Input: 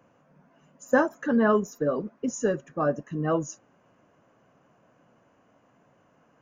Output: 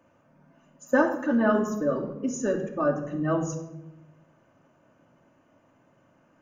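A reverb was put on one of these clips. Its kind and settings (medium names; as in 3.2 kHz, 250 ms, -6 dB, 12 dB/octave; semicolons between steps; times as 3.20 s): simulated room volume 3100 m³, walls furnished, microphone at 2.6 m; trim -2.5 dB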